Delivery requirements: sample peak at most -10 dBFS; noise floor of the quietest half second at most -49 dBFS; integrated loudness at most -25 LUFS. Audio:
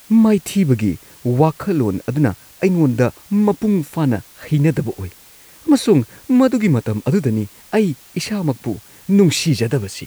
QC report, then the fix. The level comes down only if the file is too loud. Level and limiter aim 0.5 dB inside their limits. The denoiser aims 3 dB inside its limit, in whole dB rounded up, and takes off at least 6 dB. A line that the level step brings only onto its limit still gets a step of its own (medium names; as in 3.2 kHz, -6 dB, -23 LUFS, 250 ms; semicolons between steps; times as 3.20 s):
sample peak -2.0 dBFS: fail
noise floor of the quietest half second -45 dBFS: fail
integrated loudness -17.5 LUFS: fail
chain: trim -8 dB; peak limiter -10.5 dBFS